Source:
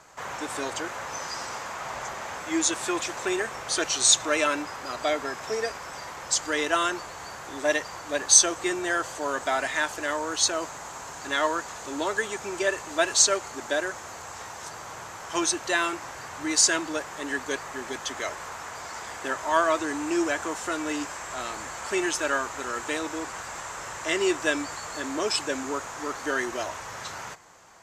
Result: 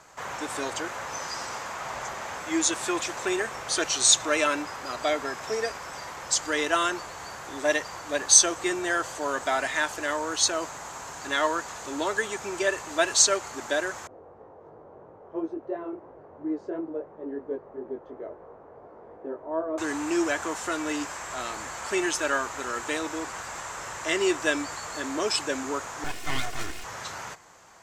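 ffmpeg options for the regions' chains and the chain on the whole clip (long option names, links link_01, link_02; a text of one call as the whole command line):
ffmpeg -i in.wav -filter_complex "[0:a]asettb=1/sr,asplit=3[link_01][link_02][link_03];[link_01]atrim=end=14.074[link_04];[link_02]atrim=start=14.07:end=19.78,asetpts=PTS-STARTPTS,afade=type=in:duration=0.004:curve=qsin,afade=type=out:start_time=5.706:duration=0.004:curve=qsin,lowpass=frequency=460:width_type=q:width=1.9,lowshelf=frequency=170:gain=-8,flanger=delay=18.5:depth=3.5:speed=2.9[link_05];[link_03]atrim=start=19.776[link_06];[link_04][link_05]acrossfade=duration=0.004:curve1=hsin:curve2=qsin[link_07];[link_07][link_06]acrossfade=duration=0.004:curve1=qsin:curve2=hsin,asettb=1/sr,asplit=3[link_08][link_09][link_10];[link_08]atrim=end=26.044[link_11];[link_09]atrim=start=26.04:end=26.84,asetpts=PTS-STARTPTS,afade=type=in:duration=0.004:curve=qsin,afade=type=out:start_time=0.796:duration=0.004:curve=qsin,aeval=exprs='abs(val(0))':channel_layout=same,aecho=1:1:2.8:0.48,atrim=end_sample=35280[link_12];[link_10]atrim=start=26.836[link_13];[link_11][link_12]acrossfade=duration=0.004:curve1=hsin:curve2=qsin[link_14];[link_14][link_13]acrossfade=duration=0.004:curve1=qsin:curve2=hsin" out.wav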